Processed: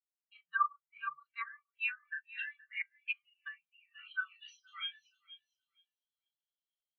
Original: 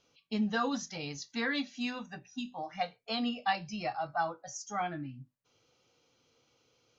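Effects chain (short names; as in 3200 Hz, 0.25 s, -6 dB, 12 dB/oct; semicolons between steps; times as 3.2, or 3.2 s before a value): doubler 34 ms -3 dB; feedback echo 0.47 s, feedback 47%, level -11.5 dB; band-pass sweep 940 Hz -> 3700 Hz, 0.95–4.63; FFT band-reject 180–1100 Hz; treble ducked by the level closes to 680 Hz, closed at -41.5 dBFS; bell 3000 Hz +13.5 dB 2.1 oct; spectral expander 2.5:1; gain +5 dB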